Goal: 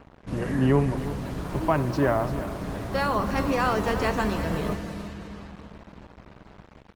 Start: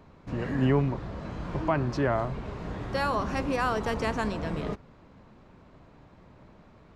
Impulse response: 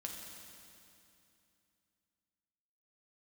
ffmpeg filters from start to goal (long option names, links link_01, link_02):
-filter_complex "[0:a]asettb=1/sr,asplit=3[link_01][link_02][link_03];[link_01]atrim=end=0.834[link_04];[link_02]atrim=start=0.83:end=1.92,asetpts=PTS-STARTPTS,afade=type=in:duration=0.004:curve=qsin,afade=type=out:start_time=1.086:duration=0.004:curve=qsin,highshelf=frequency=4100:gain=5.5[link_05];[link_03]atrim=start=1.916[link_06];[link_04][link_05]acrossfade=duration=0.004:curve1=hsin:curve2=qsin[link_07];[link_07][link_06]acrossfade=duration=0.004:curve1=qsin:curve2=hsin,aecho=1:1:340|680|1020|1360|1700:0.251|0.121|0.0579|0.0278|0.0133,aeval=exprs='val(0)+0.002*(sin(2*PI*60*n/s)+sin(2*PI*2*60*n/s)/2+sin(2*PI*3*60*n/s)/3+sin(2*PI*4*60*n/s)/4+sin(2*PI*5*60*n/s)/5)':channel_layout=same,asplit=2[link_08][link_09];[1:a]atrim=start_sample=2205[link_10];[link_09][link_10]afir=irnorm=-1:irlink=0,volume=-2.5dB[link_11];[link_08][link_11]amix=inputs=2:normalize=0,acrusher=bits=6:mix=0:aa=0.5" -ar 48000 -c:a libopus -b:a 20k